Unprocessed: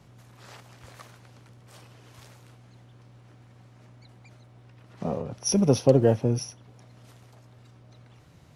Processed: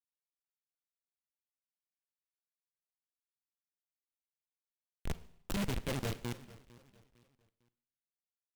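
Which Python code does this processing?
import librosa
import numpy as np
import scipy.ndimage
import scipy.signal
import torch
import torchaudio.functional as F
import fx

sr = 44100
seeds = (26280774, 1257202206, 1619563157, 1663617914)

p1 = fx.wiener(x, sr, points=41)
p2 = fx.env_lowpass(p1, sr, base_hz=2800.0, full_db=-22.0)
p3 = scipy.signal.sosfilt(scipy.signal.butter(2, 6500.0, 'lowpass', fs=sr, output='sos'), p2)
p4 = fx.env_lowpass(p3, sr, base_hz=970.0, full_db=-22.5)
p5 = fx.high_shelf(p4, sr, hz=4000.0, db=11.5)
p6 = fx.schmitt(p5, sr, flips_db=-20.5)
p7 = fx.rider(p6, sr, range_db=4, speed_s=2.0)
p8 = p7 + fx.echo_feedback(p7, sr, ms=453, feedback_pct=35, wet_db=-20.0, dry=0)
p9 = fx.rev_schroeder(p8, sr, rt60_s=0.69, comb_ms=33, drr_db=15.0)
p10 = fx.noise_mod_delay(p9, sr, seeds[0], noise_hz=2000.0, depth_ms=0.14)
y = p10 * 10.0 ** (-3.5 / 20.0)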